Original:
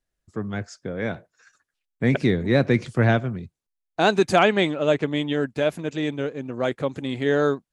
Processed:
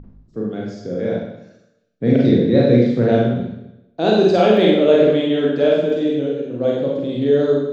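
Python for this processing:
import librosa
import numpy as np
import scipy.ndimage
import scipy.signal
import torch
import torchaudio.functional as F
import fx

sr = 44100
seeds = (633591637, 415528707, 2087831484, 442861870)

y = fx.graphic_eq(x, sr, hz=(125, 250, 500, 1000, 2000, 4000), db=(10, 11, 11, -8, -8, 7))
y = fx.add_hum(y, sr, base_hz=50, snr_db=12)
y = scipy.signal.sosfilt(scipy.signal.butter(4, 6700.0, 'lowpass', fs=sr, output='sos'), y)
y = fx.peak_eq(y, sr, hz=1400.0, db=fx.steps((0.0, 8.5), (4.57, 15.0), (5.9, 6.5)), octaves=2.8)
y = fx.hum_notches(y, sr, base_hz=50, count=5)
y = fx.rev_schroeder(y, sr, rt60_s=0.87, comb_ms=33, drr_db=-4.0)
y = y * librosa.db_to_amplitude(-12.0)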